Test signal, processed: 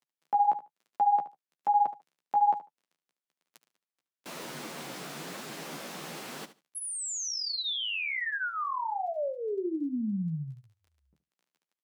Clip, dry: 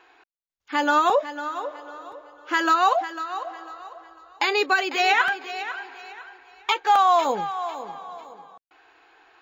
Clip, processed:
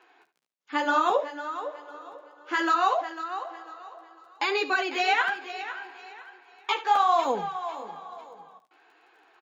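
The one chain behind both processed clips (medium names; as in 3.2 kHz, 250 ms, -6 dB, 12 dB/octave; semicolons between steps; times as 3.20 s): crackle 16 per s -46 dBFS; elliptic high-pass 150 Hz, stop band 40 dB; treble shelf 9.7 kHz -6.5 dB; flange 1.1 Hz, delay 7.4 ms, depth 9.3 ms, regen -14%; feedback delay 73 ms, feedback 17%, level -14 dB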